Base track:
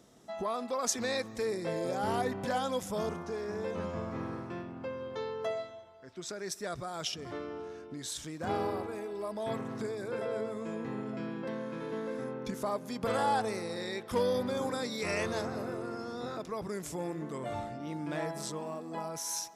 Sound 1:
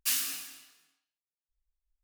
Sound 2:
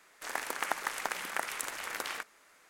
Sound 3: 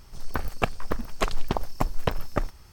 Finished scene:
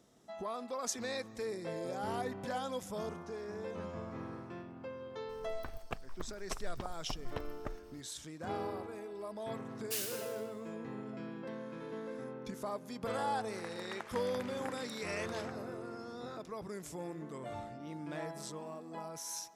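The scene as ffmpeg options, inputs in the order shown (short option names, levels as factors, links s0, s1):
-filter_complex "[0:a]volume=0.501[s0];[3:a]acompressor=mode=upward:threshold=0.0224:ratio=2.5:attack=3.2:release=140:knee=2.83:detection=peak[s1];[2:a]adynamicsmooth=sensitivity=4:basefreq=5500[s2];[s1]atrim=end=2.72,asetpts=PTS-STARTPTS,volume=0.15,afade=t=in:d=0.004:c=hsin,afade=t=out:st=2.716:d=0.004:c=hsin,adelay=233289S[s3];[1:a]atrim=end=2.03,asetpts=PTS-STARTPTS,volume=0.355,afade=t=in:d=0.004:c=hsin,afade=t=out:st=2.026:d=0.004:c=hsin,adelay=9850[s4];[s2]atrim=end=2.69,asetpts=PTS-STARTPTS,volume=0.237,afade=t=in:d=0.004:c=hsin,afade=t=out:st=2.686:d=0.004:c=hsin,adelay=13290[s5];[s0][s3][s4][s5]amix=inputs=4:normalize=0"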